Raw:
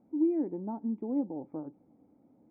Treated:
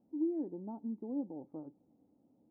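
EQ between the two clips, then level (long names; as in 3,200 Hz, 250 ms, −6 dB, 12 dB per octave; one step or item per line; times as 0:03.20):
low-pass filter 1,000 Hz 12 dB per octave
−6.5 dB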